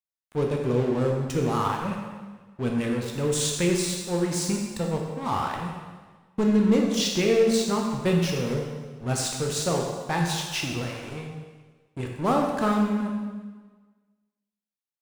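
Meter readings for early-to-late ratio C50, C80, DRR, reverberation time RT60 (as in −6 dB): 3.0 dB, 4.5 dB, 0.0 dB, 1.4 s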